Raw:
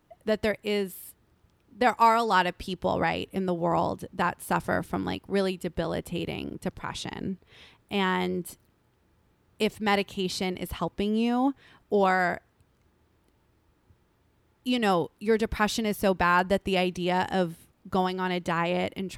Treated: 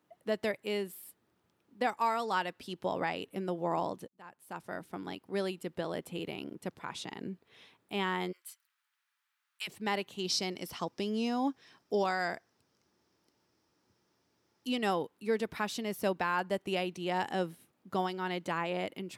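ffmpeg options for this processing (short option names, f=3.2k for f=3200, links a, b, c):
-filter_complex "[0:a]asplit=3[a][b][c];[a]afade=t=out:st=8.31:d=0.02[d];[b]highpass=f=1.3k:w=0.5412,highpass=f=1.3k:w=1.3066,afade=t=in:st=8.31:d=0.02,afade=t=out:st=9.67:d=0.02[e];[c]afade=t=in:st=9.67:d=0.02[f];[d][e][f]amix=inputs=3:normalize=0,asettb=1/sr,asplit=3[g][h][i];[g]atrim=end=10.184[j];[h]atrim=start=10.18:end=14.68,asetpts=PTS-STARTPTS,afade=t=in:d=0.004:c=qsin,afade=t=out:st=4.496:d=0.004:c=qsin,equalizer=f=5.4k:w=2.5:g=15[k];[i]atrim=start=14.676[l];[j][k]acrossfade=d=0.004:c1=hsin:c2=qsin[m];[m][l]acrossfade=d=0.004:c1=qsin:c2=hsin,asplit=2[n][o];[n]atrim=end=4.08,asetpts=PTS-STARTPTS,afade=t=out:st=4.076:d=0.004:c=hsin[p];[o]atrim=start=4.08,asetpts=PTS-STARTPTS,afade=t=in:d=1.48[q];[p][q]concat=n=2:v=0:a=1,highpass=180,alimiter=limit=-14dB:level=0:latency=1:release=399,volume=-6dB"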